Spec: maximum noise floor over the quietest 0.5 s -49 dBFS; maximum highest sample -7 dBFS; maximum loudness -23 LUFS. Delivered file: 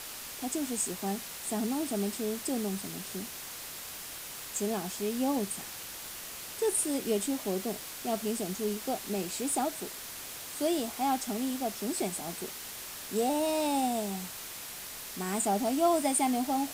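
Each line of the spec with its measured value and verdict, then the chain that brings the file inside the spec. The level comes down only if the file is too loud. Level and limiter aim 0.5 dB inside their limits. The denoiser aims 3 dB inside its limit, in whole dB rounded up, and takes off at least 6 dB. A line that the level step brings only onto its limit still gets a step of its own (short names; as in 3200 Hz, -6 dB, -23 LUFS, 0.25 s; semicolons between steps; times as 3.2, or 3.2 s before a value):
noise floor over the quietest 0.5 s -43 dBFS: fail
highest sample -14.5 dBFS: OK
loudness -32.5 LUFS: OK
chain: denoiser 9 dB, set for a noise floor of -43 dBFS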